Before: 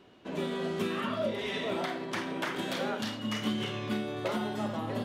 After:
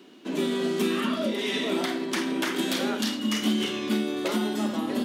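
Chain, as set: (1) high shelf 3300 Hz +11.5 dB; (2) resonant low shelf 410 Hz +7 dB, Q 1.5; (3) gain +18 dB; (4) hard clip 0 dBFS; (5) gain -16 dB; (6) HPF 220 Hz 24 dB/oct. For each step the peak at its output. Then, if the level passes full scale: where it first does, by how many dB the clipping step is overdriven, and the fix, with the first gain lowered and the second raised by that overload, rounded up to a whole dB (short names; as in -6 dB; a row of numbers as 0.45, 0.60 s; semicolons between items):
-15.5, -12.0, +6.0, 0.0, -16.0, -13.5 dBFS; step 3, 6.0 dB; step 3 +12 dB, step 5 -10 dB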